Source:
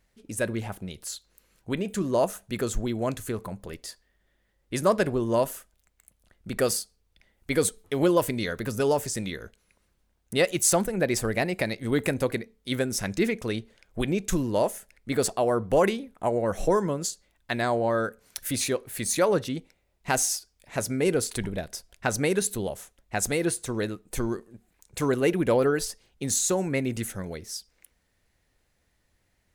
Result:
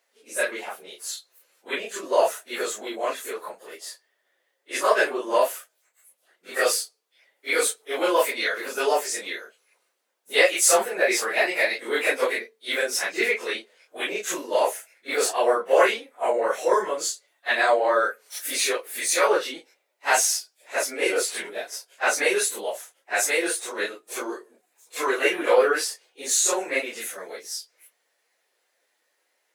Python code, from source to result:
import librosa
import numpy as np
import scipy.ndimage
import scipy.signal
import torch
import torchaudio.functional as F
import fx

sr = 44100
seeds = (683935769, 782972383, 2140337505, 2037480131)

y = fx.phase_scramble(x, sr, seeds[0], window_ms=100)
y = scipy.signal.sosfilt(scipy.signal.butter(4, 420.0, 'highpass', fs=sr, output='sos'), y)
y = fx.dynamic_eq(y, sr, hz=2100.0, q=0.71, threshold_db=-43.0, ratio=4.0, max_db=7)
y = y * 10.0 ** (3.0 / 20.0)